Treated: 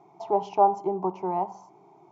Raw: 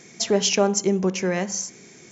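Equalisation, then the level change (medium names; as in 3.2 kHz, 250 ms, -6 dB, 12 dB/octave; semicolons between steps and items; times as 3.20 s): resonant low-pass 880 Hz, resonance Q 4.9; bass shelf 380 Hz -11.5 dB; static phaser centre 340 Hz, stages 8; 0.0 dB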